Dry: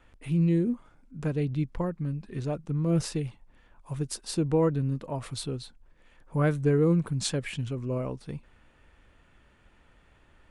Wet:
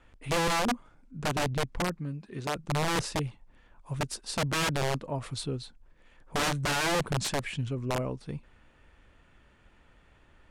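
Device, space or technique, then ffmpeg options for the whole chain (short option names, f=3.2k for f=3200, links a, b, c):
overflowing digital effects unit: -filter_complex "[0:a]aeval=exprs='(mod(13.3*val(0)+1,2)-1)/13.3':c=same,lowpass=10k,asettb=1/sr,asplit=3[a][b][c];[a]atrim=end=1.994[d];[b]atrim=start=1.99:end=2.56,asetpts=PTS-STARTPTS,afade=t=in:d=0.004:c=qsin,afade=t=out:st=0.566:d=0.004:c=qsin,highpass=f=210:p=1[e];[c]atrim=start=2.556[f];[d][e]acrossfade=d=0.004:c1=hsin:c2=qsin[g];[g][f]acrossfade=d=0.004:c1=qsin:c2=hsin"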